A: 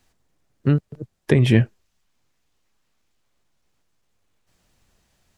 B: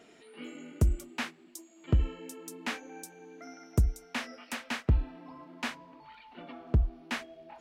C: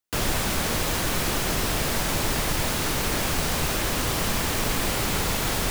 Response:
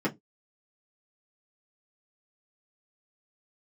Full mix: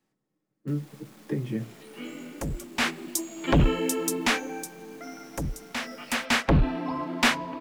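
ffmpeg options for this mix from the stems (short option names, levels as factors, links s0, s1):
-filter_complex "[0:a]acompressor=threshold=0.0126:ratio=1.5,volume=0.126,asplit=2[s0][s1];[s1]volume=0.668[s2];[1:a]aeval=exprs='0.211*sin(PI/2*5.62*val(0)/0.211)':c=same,adelay=1600,volume=3.16,afade=t=in:st=2.73:d=0.2:silence=0.237137,afade=t=out:st=4.01:d=0.7:silence=0.266073,afade=t=in:st=5.95:d=0.58:silence=0.281838[s3];[2:a]highpass=f=180:w=0.5412,highpass=f=180:w=1.3066,acrossover=split=280[s4][s5];[s5]acompressor=threshold=0.0224:ratio=6[s6];[s4][s6]amix=inputs=2:normalize=0,aeval=exprs='(tanh(70.8*val(0)+0.55)-tanh(0.55))/70.8':c=same,adelay=550,volume=0.168,asplit=2[s7][s8];[s8]volume=0.188[s9];[3:a]atrim=start_sample=2205[s10];[s2][s9]amix=inputs=2:normalize=0[s11];[s11][s10]afir=irnorm=-1:irlink=0[s12];[s0][s3][s7][s12]amix=inputs=4:normalize=0"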